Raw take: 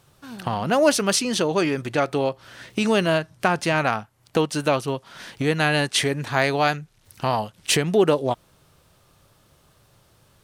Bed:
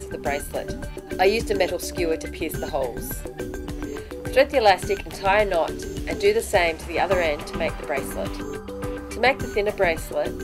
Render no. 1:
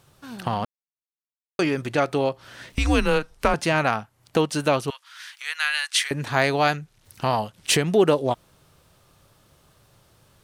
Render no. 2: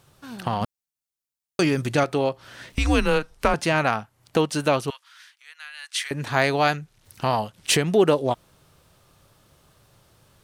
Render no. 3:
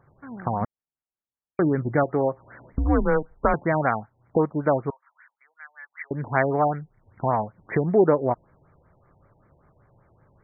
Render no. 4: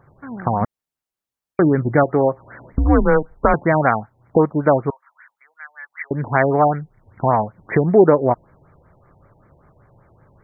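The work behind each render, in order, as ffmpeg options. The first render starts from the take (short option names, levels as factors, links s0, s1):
-filter_complex "[0:a]asettb=1/sr,asplit=3[s0][s1][s2];[s0]atrim=end=2.724[s3];[s1]atrim=start=2.72:end=3.54,asetpts=PTS-STARTPTS,afade=t=in:d=0.004:c=qsin,afade=t=out:st=0.816:d=0.004:c=qsin,afreqshift=-150[s4];[s2]atrim=start=3.536[s5];[s3][s4]acrossfade=d=0.004:c1=hsin:c2=qsin[s6];[s6][s5]acrossfade=d=0.004:c1=qsin:c2=hsin,asettb=1/sr,asplit=3[s7][s8][s9];[s7]atrim=end=4.904[s10];[s8]atrim=start=4.9:end=6.11,asetpts=PTS-STARTPTS,afade=t=in:d=0.004:c=qsin,afade=t=out:st=1.206:d=0.004:c=qsin,highpass=f=1300:w=0.5412,highpass=f=1300:w=1.3066[s11];[s9]atrim=start=6.106[s12];[s10][s11]acrossfade=d=0.004:c1=hsin:c2=qsin[s13];[s13][s12]acrossfade=d=0.004:c1=qsin:c2=hsin,asplit=3[s14][s15][s16];[s14]atrim=end=0.65,asetpts=PTS-STARTPTS,afade=t=out:st=0.646:d=0.004:c=hsin[s17];[s15]atrim=start=0.65:end=1.59,asetpts=PTS-STARTPTS,volume=0[s18];[s16]atrim=start=1.59,asetpts=PTS-STARTPTS,afade=t=in:d=0.004:c=hsin[s19];[s17][s18][s19]concat=n=3:v=0:a=1"
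-filter_complex "[0:a]asettb=1/sr,asplit=3[s0][s1][s2];[s0]atrim=end=0.614[s3];[s1]atrim=start=0.61:end=2.04,asetpts=PTS-STARTPTS,afade=t=in:d=0.004:c=qsin,afade=t=out:st=1.426:d=0.004:c=qsin,bass=f=250:g=6,treble=f=4000:g=7[s4];[s2]atrim=start=2.036[s5];[s3][s4]acrossfade=d=0.004:c1=hsin:c2=qsin[s6];[s6][s5]acrossfade=d=0.004:c1=qsin:c2=hsin,asplit=3[s7][s8][s9];[s7]atrim=end=5.36,asetpts=PTS-STARTPTS,afade=t=out:st=4.87:d=0.49:silence=0.149624[s10];[s8]atrim=start=5.36:end=5.76,asetpts=PTS-STARTPTS,volume=0.15[s11];[s9]atrim=start=5.76,asetpts=PTS-STARTPTS,afade=t=in:d=0.49:silence=0.149624[s12];[s10][s11][s12]concat=n=3:v=0:a=1"
-af "aexciter=amount=8.7:drive=8.9:freq=3800,afftfilt=real='re*lt(b*sr/1024,940*pow(2400/940,0.5+0.5*sin(2*PI*5.2*pts/sr)))':imag='im*lt(b*sr/1024,940*pow(2400/940,0.5+0.5*sin(2*PI*5.2*pts/sr)))':win_size=1024:overlap=0.75"
-af "volume=2.11,alimiter=limit=0.891:level=0:latency=1"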